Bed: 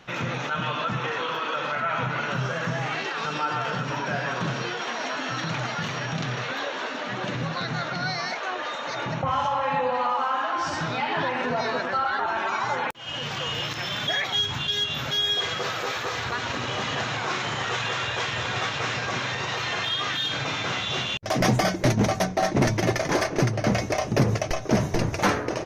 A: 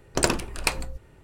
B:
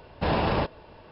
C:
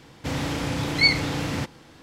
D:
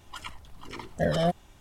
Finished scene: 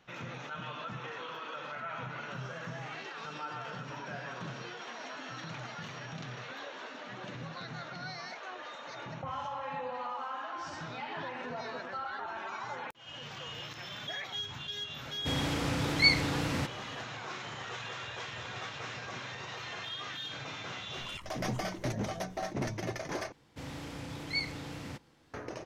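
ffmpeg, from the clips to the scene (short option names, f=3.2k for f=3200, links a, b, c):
-filter_complex "[3:a]asplit=2[a][b];[0:a]volume=-13.5dB[c];[4:a]acompressor=threshold=-39dB:ratio=6:attack=3.2:release=140:knee=1:detection=peak[d];[c]asplit=2[e][f];[e]atrim=end=23.324[g];[b]atrim=end=2.02,asetpts=PTS-STARTPTS,volume=-15dB[h];[f]atrim=start=25.336[i];[a]atrim=end=2.02,asetpts=PTS-STARTPTS,volume=-5dB,afade=t=in:d=0.004:c=hsin,afade=t=out:st=2.016:d=0.004:c=hsin,adelay=15010[j];[d]atrim=end=1.6,asetpts=PTS-STARTPTS,volume=-3.5dB,afade=t=in:d=0.004:c=hsin,afade=t=out:st=1.596:d=0.004:c=hsin,adelay=20930[k];[g][h]acrossfade=d=0.004:c1=hsin:c2=hsin[l];[l][i]acrossfade=d=0.004:c1=hsin:c2=hsin[m];[m][j][k]amix=inputs=3:normalize=0"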